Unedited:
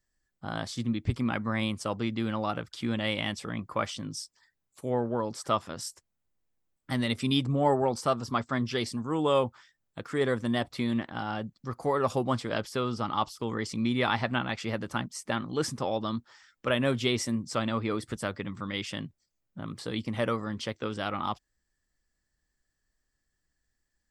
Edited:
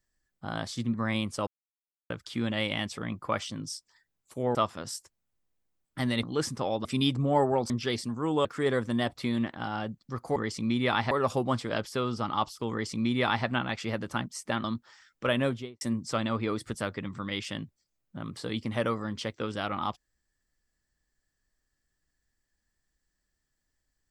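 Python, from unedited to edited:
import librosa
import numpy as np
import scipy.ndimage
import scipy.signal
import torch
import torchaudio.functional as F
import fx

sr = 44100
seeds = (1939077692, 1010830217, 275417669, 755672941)

y = fx.studio_fade_out(x, sr, start_s=16.79, length_s=0.44)
y = fx.edit(y, sr, fx.cut(start_s=0.94, length_s=0.47),
    fx.silence(start_s=1.94, length_s=0.63),
    fx.cut(start_s=5.02, length_s=0.45),
    fx.cut(start_s=8.0, length_s=0.58),
    fx.cut(start_s=9.33, length_s=0.67),
    fx.duplicate(start_s=13.51, length_s=0.75, to_s=11.91),
    fx.move(start_s=15.44, length_s=0.62, to_s=7.15), tone=tone)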